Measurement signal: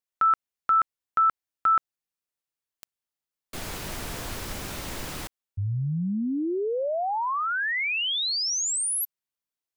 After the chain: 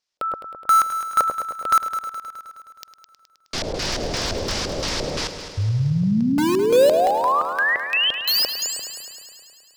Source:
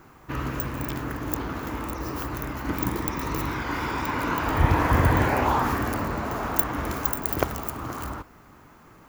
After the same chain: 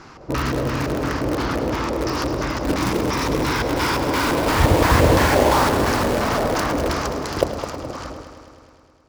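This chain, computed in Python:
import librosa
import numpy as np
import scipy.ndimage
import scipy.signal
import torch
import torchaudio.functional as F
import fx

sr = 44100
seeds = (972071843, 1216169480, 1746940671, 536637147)

p1 = fx.fade_out_tail(x, sr, length_s=2.71)
p2 = fx.low_shelf(p1, sr, hz=390.0, db=-3.0)
p3 = fx.filter_lfo_lowpass(p2, sr, shape='square', hz=2.9, low_hz=550.0, high_hz=5200.0, q=3.0)
p4 = (np.mod(10.0 ** (23.5 / 20.0) * p3 + 1.0, 2.0) - 1.0) / 10.0 ** (23.5 / 20.0)
p5 = p3 + F.gain(torch.from_numpy(p4), -6.0).numpy()
p6 = fx.quant_float(p5, sr, bits=8)
p7 = p6 + fx.echo_heads(p6, sr, ms=105, heads='first and second', feedback_pct=63, wet_db=-13, dry=0)
y = F.gain(torch.from_numpy(p7), 5.5).numpy()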